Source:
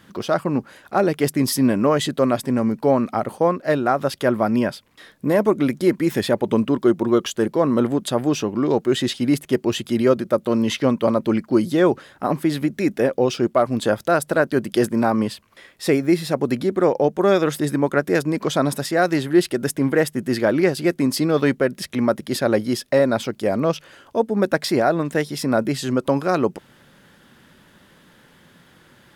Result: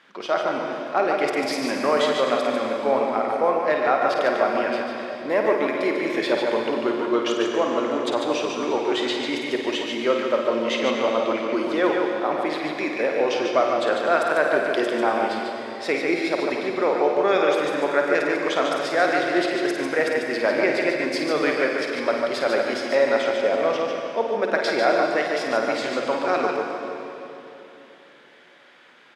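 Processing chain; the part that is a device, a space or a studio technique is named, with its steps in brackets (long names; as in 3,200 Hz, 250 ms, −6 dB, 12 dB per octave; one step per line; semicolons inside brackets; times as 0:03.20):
station announcement (band-pass filter 490–4,600 Hz; parametric band 2,300 Hz +5.5 dB 0.32 octaves; loudspeakers that aren't time-aligned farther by 18 metres −7 dB, 50 metres −5 dB; convolution reverb RT60 3.2 s, pre-delay 83 ms, DRR 3.5 dB)
level −1.5 dB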